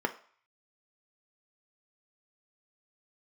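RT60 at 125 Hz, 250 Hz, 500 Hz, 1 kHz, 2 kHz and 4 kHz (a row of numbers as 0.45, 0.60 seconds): 0.45, 0.35, 0.40, 0.55, 0.55, 0.50 seconds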